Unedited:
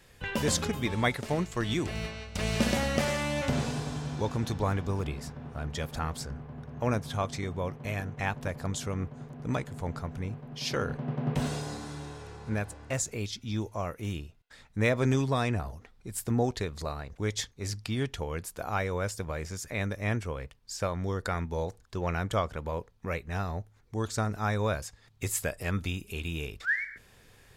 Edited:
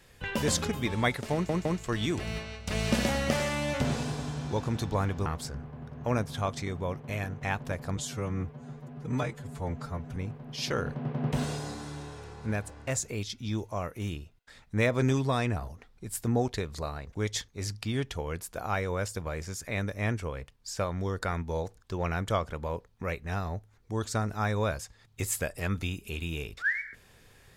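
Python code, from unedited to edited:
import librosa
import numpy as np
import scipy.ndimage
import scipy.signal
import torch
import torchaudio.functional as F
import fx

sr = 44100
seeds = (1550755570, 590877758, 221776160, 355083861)

y = fx.edit(x, sr, fx.stutter(start_s=1.33, slice_s=0.16, count=3),
    fx.cut(start_s=4.94, length_s=1.08),
    fx.stretch_span(start_s=8.73, length_s=1.46, factor=1.5), tone=tone)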